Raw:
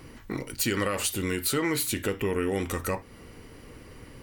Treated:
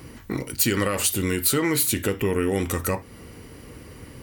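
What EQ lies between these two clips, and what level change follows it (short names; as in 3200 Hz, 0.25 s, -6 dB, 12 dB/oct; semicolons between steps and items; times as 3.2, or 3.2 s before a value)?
HPF 45 Hz; low shelf 320 Hz +4 dB; high shelf 7400 Hz +7 dB; +2.5 dB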